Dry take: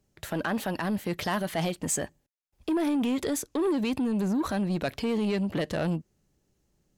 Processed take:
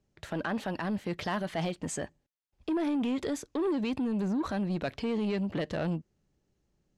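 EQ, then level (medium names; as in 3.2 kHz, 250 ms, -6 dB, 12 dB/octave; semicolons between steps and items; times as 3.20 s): distance through air 70 m; -3.0 dB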